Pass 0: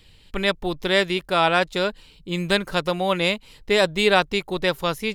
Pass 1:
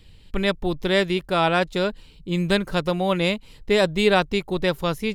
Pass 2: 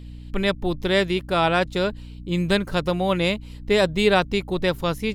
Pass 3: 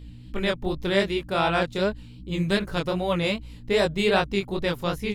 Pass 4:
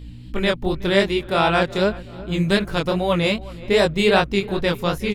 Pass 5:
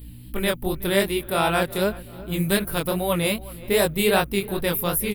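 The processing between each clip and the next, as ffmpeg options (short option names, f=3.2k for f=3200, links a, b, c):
-af "lowshelf=f=400:g=8,volume=-3dB"
-af "aeval=exprs='val(0)+0.0141*(sin(2*PI*60*n/s)+sin(2*PI*2*60*n/s)/2+sin(2*PI*3*60*n/s)/3+sin(2*PI*4*60*n/s)/4+sin(2*PI*5*60*n/s)/5)':c=same"
-af "flanger=delay=18.5:depth=7.1:speed=2.6"
-filter_complex "[0:a]asplit=2[a][b];[b]adelay=371,lowpass=f=2.5k:p=1,volume=-19dB,asplit=2[c][d];[d]adelay=371,lowpass=f=2.5k:p=1,volume=0.47,asplit=2[e][f];[f]adelay=371,lowpass=f=2.5k:p=1,volume=0.47,asplit=2[g][h];[h]adelay=371,lowpass=f=2.5k:p=1,volume=0.47[i];[a][c][e][g][i]amix=inputs=5:normalize=0,volume=5dB"
-af "aexciter=amount=15.2:drive=7.4:freq=9.6k,volume=-3.5dB"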